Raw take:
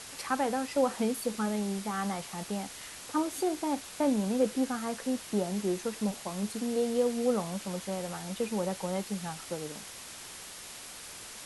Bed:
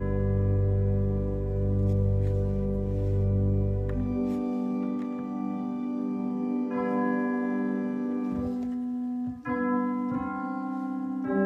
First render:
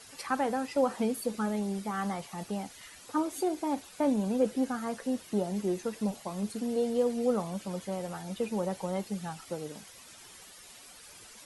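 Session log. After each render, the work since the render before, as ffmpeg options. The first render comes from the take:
-af "afftdn=nr=11:nf=-46"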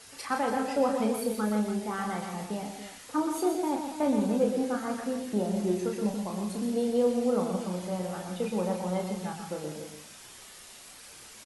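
-filter_complex "[0:a]asplit=2[a][b];[b]adelay=33,volume=-5.5dB[c];[a][c]amix=inputs=2:normalize=0,aecho=1:1:122.4|166.2|285.7:0.447|0.282|0.282"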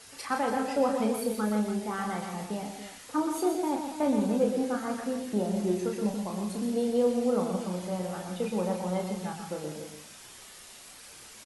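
-af anull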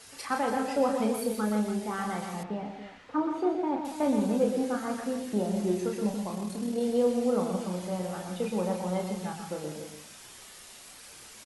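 -filter_complex "[0:a]asettb=1/sr,asplit=3[a][b][c];[a]atrim=end=2.434[d];[b]atrim=start=2.43:end=3.85,asetpts=PTS-STARTPTS,afade=t=in:d=0.004:c=qsin,afade=t=out:st=1.416:d=0.004:c=qsin,lowpass=2.4k[e];[c]atrim=start=3.846[f];[d][e]acrossfade=d=0.004:c1=hsin:c2=qsin[g];[g][f]acrossfade=d=0.004:c1=qsin:c2=hsin,asettb=1/sr,asplit=3[h][i][j];[h]atrim=end=6.354[k];[i]atrim=start=6.35:end=6.81,asetpts=PTS-STARTPTS,afade=t=in:d=0.004:c=qsin,afade=t=out:st=0.456:d=0.004:c=qsin,tremolo=f=39:d=0.4[l];[j]atrim=start=6.806[m];[k][l]acrossfade=d=0.004:c1=hsin:c2=qsin[n];[n][m]acrossfade=d=0.004:c1=qsin:c2=hsin"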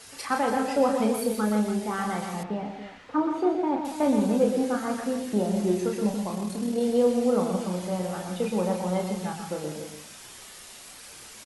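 -af "volume=3.5dB"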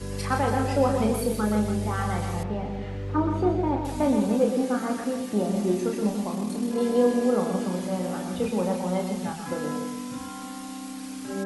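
-filter_complex "[1:a]volume=-5.5dB[a];[0:a][a]amix=inputs=2:normalize=0"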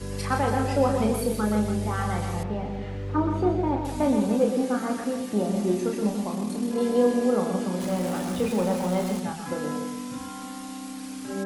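-filter_complex "[0:a]asettb=1/sr,asplit=3[a][b][c];[a]atrim=end=7.804[d];[b]atrim=start=7.8:end=9.2,asetpts=PTS-STARTPTS,afade=t=in:d=0.004:c=qsin,afade=t=out:st=1.396:d=0.004:c=qsin,aeval=exprs='val(0)+0.5*0.0211*sgn(val(0))':c=same[e];[c]atrim=start=9.196[f];[d][e]acrossfade=d=0.004:c1=hsin:c2=qsin[g];[g][f]acrossfade=d=0.004:c1=qsin:c2=hsin"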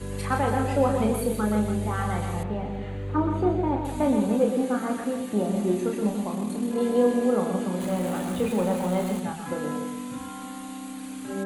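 -af "equalizer=f=5.3k:t=o:w=0.33:g=-13"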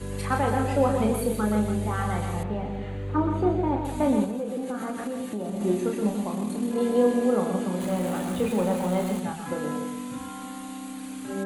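-filter_complex "[0:a]asettb=1/sr,asplit=3[a][b][c];[a]atrim=end=4.244[d];[b]atrim=start=4.24:end=5.61,asetpts=PTS-STARTPTS,afade=t=in:d=0.004:c=qsin,afade=t=out:st=1.366:d=0.004:c=qsin,acompressor=threshold=-27dB:ratio=6:attack=3.2:release=140:knee=1:detection=peak[e];[c]atrim=start=5.606[f];[d][e]acrossfade=d=0.004:c1=hsin:c2=qsin[g];[g][f]acrossfade=d=0.004:c1=qsin:c2=hsin"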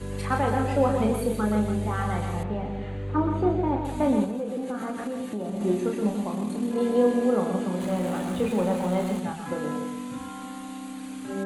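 -af "highshelf=f=10k:g=-8.5"

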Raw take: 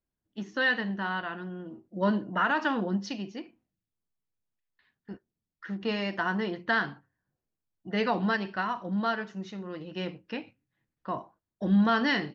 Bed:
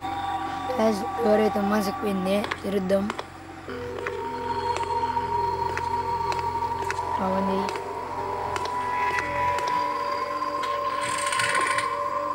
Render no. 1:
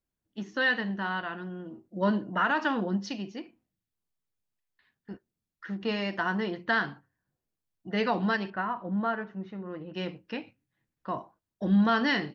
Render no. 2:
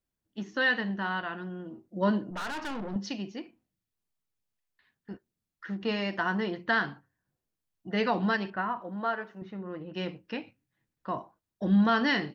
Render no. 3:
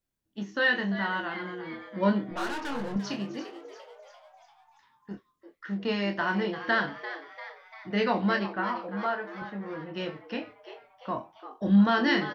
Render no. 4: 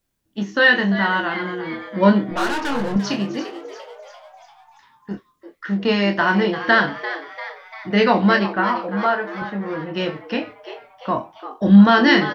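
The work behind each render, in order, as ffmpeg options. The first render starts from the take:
-filter_complex "[0:a]asettb=1/sr,asplit=3[a][b][c];[a]atrim=end=8.504[d];[b]atrim=start=8.5:end=9.94,asetpts=PTS-STARTPTS,afade=t=in:d=0.004:c=qsin,afade=t=out:st=1.436:d=0.004:c=qsin,lowpass=1.8k[e];[c]atrim=start=9.936[f];[d][e]acrossfade=d=0.004:c1=hsin:c2=qsin[g];[g][f]acrossfade=d=0.004:c1=qsin:c2=hsin"
-filter_complex "[0:a]asettb=1/sr,asplit=3[a][b][c];[a]atrim=end=2.304[d];[b]atrim=start=2.3:end=2.96,asetpts=PTS-STARTPTS,afade=t=in:d=0.004:c=qsin,afade=t=out:st=0.656:d=0.004:c=qsin,aeval=exprs='(tanh(44.7*val(0)+0.5)-tanh(0.5))/44.7':c=same[e];[c]atrim=start=2.956[f];[d][e]acrossfade=d=0.004:c1=hsin:c2=qsin[g];[g][f]acrossfade=d=0.004:c1=qsin:c2=hsin,asettb=1/sr,asplit=3[h][i][j];[h]atrim=end=8.814[k];[i]atrim=start=8.81:end=9.42,asetpts=PTS-STARTPTS,afade=t=in:d=0.004:c=qsin,afade=t=out:st=0.606:d=0.004:c=qsin,bass=f=250:g=-12,treble=f=4k:g=8[l];[j]atrim=start=9.416[m];[k][l]acrossfade=d=0.004:c1=hsin:c2=qsin[n];[n][m]acrossfade=d=0.004:c1=qsin:c2=hsin"
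-filter_complex "[0:a]asplit=2[a][b];[b]adelay=25,volume=-6dB[c];[a][c]amix=inputs=2:normalize=0,asplit=7[d][e][f][g][h][i][j];[e]adelay=344,afreqshift=140,volume=-12.5dB[k];[f]adelay=688,afreqshift=280,volume=-17.9dB[l];[g]adelay=1032,afreqshift=420,volume=-23.2dB[m];[h]adelay=1376,afreqshift=560,volume=-28.6dB[n];[i]adelay=1720,afreqshift=700,volume=-33.9dB[o];[j]adelay=2064,afreqshift=840,volume=-39.3dB[p];[d][k][l][m][n][o][p]amix=inputs=7:normalize=0"
-af "volume=10.5dB"

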